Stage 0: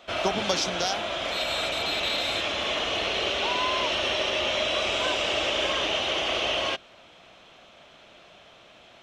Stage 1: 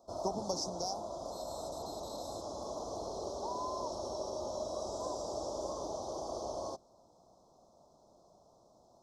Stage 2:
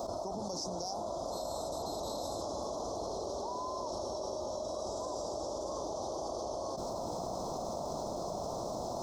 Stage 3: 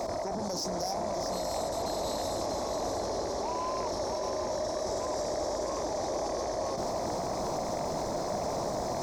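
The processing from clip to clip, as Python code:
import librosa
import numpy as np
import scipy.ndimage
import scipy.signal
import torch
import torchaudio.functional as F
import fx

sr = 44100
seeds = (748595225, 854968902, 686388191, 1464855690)

y1 = scipy.signal.sosfilt(scipy.signal.ellip(3, 1.0, 50, [970.0, 5100.0], 'bandstop', fs=sr, output='sos'), x)
y1 = y1 * librosa.db_to_amplitude(-8.0)
y2 = fx.env_flatten(y1, sr, amount_pct=100)
y2 = y2 * librosa.db_to_amplitude(-7.5)
y3 = fx.fold_sine(y2, sr, drive_db=5, ceiling_db=-25.5)
y3 = y3 + 10.0 ** (-7.0 / 20.0) * np.pad(y3, (int(640 * sr / 1000.0), 0))[:len(y3)]
y3 = y3 * librosa.db_to_amplitude(-2.5)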